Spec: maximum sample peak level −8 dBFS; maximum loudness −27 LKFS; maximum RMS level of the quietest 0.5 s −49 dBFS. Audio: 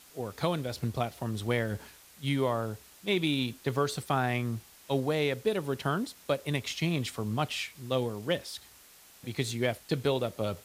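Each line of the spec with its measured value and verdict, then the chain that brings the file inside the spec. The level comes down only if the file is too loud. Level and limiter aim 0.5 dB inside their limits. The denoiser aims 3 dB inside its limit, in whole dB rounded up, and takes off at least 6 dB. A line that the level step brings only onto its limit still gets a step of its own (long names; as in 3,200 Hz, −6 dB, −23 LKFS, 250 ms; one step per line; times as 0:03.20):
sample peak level −14.5 dBFS: in spec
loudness −31.5 LKFS: in spec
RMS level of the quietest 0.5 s −56 dBFS: in spec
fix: no processing needed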